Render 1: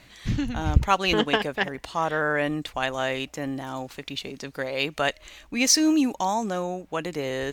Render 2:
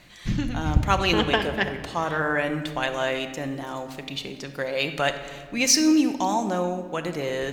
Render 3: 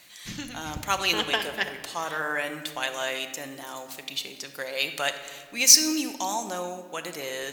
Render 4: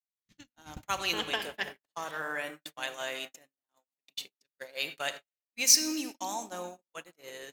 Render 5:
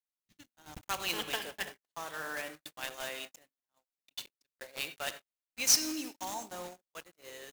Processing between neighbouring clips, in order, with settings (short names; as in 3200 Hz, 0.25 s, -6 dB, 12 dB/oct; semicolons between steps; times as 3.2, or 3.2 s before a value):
shoebox room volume 2100 m³, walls mixed, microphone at 0.88 m
RIAA curve recording; gain -4.5 dB
gate -32 dBFS, range -56 dB; gain -6.5 dB
block floating point 3-bit; gain -4 dB